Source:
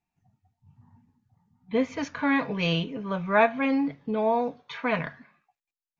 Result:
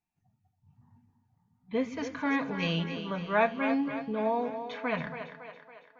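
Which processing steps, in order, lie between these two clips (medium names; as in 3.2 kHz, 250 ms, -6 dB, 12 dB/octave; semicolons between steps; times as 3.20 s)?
two-band feedback delay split 320 Hz, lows 124 ms, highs 278 ms, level -9 dB; trim -5 dB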